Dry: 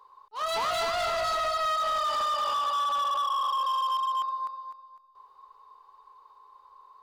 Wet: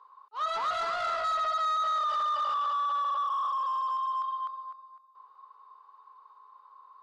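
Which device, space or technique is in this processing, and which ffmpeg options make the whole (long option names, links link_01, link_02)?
intercom: -filter_complex "[0:a]asettb=1/sr,asplit=3[link_01][link_02][link_03];[link_01]atrim=end=1.354[link_04];[link_02]atrim=start=1.35:end=3.28,asetpts=PTS-STARTPTS,afade=type=in:duration=0.004:curve=qsin,afade=type=out:start_time=1.926:duration=0.004:curve=qsin,lowpass=frequency=6200:width=0.5412,lowpass=frequency=6200:width=1.3066[link_05];[link_03]atrim=start=3.276[link_06];[link_04][link_05]acrossfade=duration=0.004:curve1=hsin:curve2=qsin[link_07];[link_07][link_06]acrossfade=duration=0.004:curve1=qsin:curve2=hsin,highpass=420,lowpass=4400,equalizer=frequency=1300:width_type=o:width=0.54:gain=9.5,asoftclip=type=tanh:threshold=-21dB,volume=-4.5dB"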